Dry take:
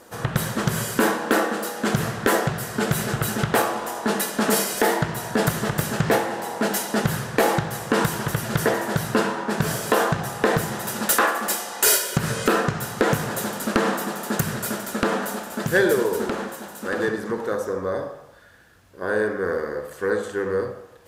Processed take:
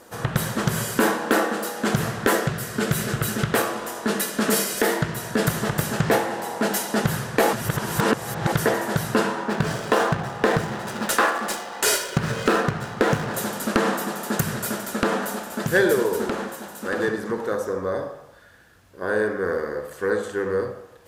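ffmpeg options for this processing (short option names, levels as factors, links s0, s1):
-filter_complex "[0:a]asettb=1/sr,asplit=3[s0][s1][s2];[s0]atrim=end=2.334[s3];[s1]atrim=start=2.33:end=5.5,asetpts=PTS-STARTPTS,afade=t=in:d=0.004:c=qsin,afade=t=out:st=3.166:d=0.004:c=qsin,equalizer=f=820:w=2.4:g=-6.5[s4];[s2]atrim=start=5.496[s5];[s3][s4]acrossfade=d=0.004:c1=hsin:c2=qsin[s6];[s6][s5]acrossfade=d=0.004:c1=qsin:c2=hsin,asettb=1/sr,asplit=3[s7][s8][s9];[s7]atrim=end=9.484[s10];[s8]atrim=start=9.48:end=13.34,asetpts=PTS-STARTPTS,afade=t=in:d=0.004:c=qsin,afade=t=out:st=3.856:d=0.004:c=qsin,adynamicsmooth=sensitivity=7.5:basefreq=1800[s11];[s9]atrim=start=13.336[s12];[s10][s11]acrossfade=d=0.004:c1=hsin:c2=qsin[s13];[s13][s12]acrossfade=d=0.004:c1=qsin:c2=hsin,asplit=3[s14][s15][s16];[s14]atrim=end=7.532[s17];[s15]atrim=start=7.528:end=8.522,asetpts=PTS-STARTPTS,areverse[s18];[s16]atrim=start=8.518[s19];[s17][s18]acrossfade=d=0.004:c1=hsin:c2=hsin[s20];[s20][s19]acrossfade=d=0.004:c1=hsin:c2=hsin"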